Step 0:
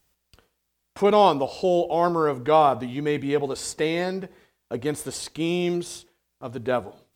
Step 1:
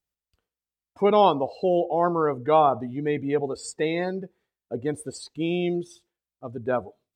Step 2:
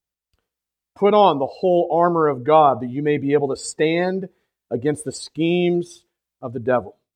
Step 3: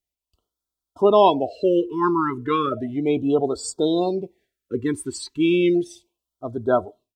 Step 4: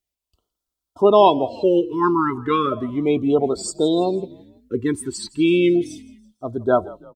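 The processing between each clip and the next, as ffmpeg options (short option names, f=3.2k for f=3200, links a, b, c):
-af "afftdn=nr=18:nf=-32,volume=-1dB"
-af "dynaudnorm=f=150:g=5:m=7dB"
-af "aecho=1:1:3:0.41,afftfilt=real='re*(1-between(b*sr/1024,580*pow(2300/580,0.5+0.5*sin(2*PI*0.34*pts/sr))/1.41,580*pow(2300/580,0.5+0.5*sin(2*PI*0.34*pts/sr))*1.41))':imag='im*(1-between(b*sr/1024,580*pow(2300/580,0.5+0.5*sin(2*PI*0.34*pts/sr))/1.41,580*pow(2300/580,0.5+0.5*sin(2*PI*0.34*pts/sr))*1.41))':win_size=1024:overlap=0.75,volume=-1.5dB"
-filter_complex "[0:a]asplit=4[a][b][c][d];[b]adelay=165,afreqshift=-44,volume=-21dB[e];[c]adelay=330,afreqshift=-88,volume=-27.6dB[f];[d]adelay=495,afreqshift=-132,volume=-34.1dB[g];[a][e][f][g]amix=inputs=4:normalize=0,volume=2dB"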